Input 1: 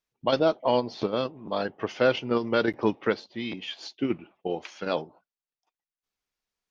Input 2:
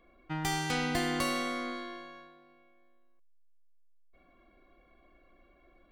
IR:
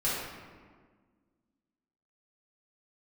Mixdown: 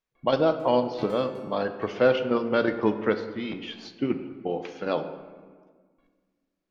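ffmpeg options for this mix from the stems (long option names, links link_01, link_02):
-filter_complex "[0:a]volume=0dB,asplit=2[link_01][link_02];[link_02]volume=-15.5dB[link_03];[1:a]tiltshelf=frequency=890:gain=-5.5,acompressor=threshold=-50dB:ratio=1.5,aeval=exprs='val(0)*pow(10,-31*if(lt(mod(1.2*n/s,1),2*abs(1.2)/1000),1-mod(1.2*n/s,1)/(2*abs(1.2)/1000),(mod(1.2*n/s,1)-2*abs(1.2)/1000)/(1-2*abs(1.2)/1000))/20)':channel_layout=same,adelay=150,volume=-5dB,asplit=2[link_04][link_05];[link_05]volume=-11.5dB[link_06];[2:a]atrim=start_sample=2205[link_07];[link_03][link_06]amix=inputs=2:normalize=0[link_08];[link_08][link_07]afir=irnorm=-1:irlink=0[link_09];[link_01][link_04][link_09]amix=inputs=3:normalize=0,highshelf=frequency=3600:gain=-9.5"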